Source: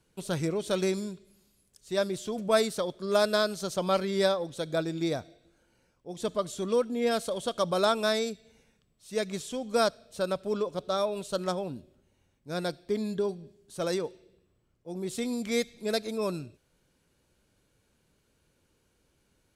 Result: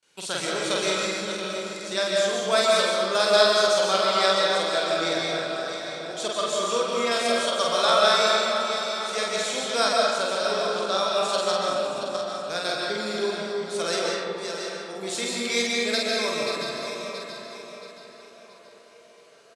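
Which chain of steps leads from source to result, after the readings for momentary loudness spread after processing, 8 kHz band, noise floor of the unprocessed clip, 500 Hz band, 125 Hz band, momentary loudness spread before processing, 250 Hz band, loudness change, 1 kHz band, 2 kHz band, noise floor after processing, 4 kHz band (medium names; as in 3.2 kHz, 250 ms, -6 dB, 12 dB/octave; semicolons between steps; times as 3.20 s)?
12 LU, +10.5 dB, -72 dBFS, +5.5 dB, -4.5 dB, 11 LU, -1.0 dB, +6.5 dB, +9.5 dB, +11.5 dB, -50 dBFS, +13.0 dB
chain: backward echo that repeats 338 ms, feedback 59%, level -9.5 dB; frequency weighting ITU-R 468; gate with hold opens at -57 dBFS; high-pass 49 Hz; treble shelf 4.1 kHz -11.5 dB; in parallel at +1.5 dB: compression, threshold -39 dBFS, peak gain reduction 17.5 dB; on the sum: doubling 47 ms -2.5 dB; on a send: feedback echo behind a band-pass 1131 ms, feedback 62%, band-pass 740 Hz, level -19.5 dB; on the sum: algorithmic reverb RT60 1.9 s, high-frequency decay 0.45×, pre-delay 100 ms, DRR -2 dB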